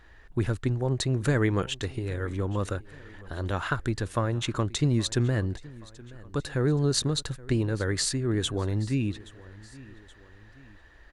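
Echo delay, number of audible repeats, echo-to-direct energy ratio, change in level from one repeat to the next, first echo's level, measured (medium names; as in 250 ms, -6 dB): 824 ms, 2, -20.0 dB, -5.5 dB, -21.0 dB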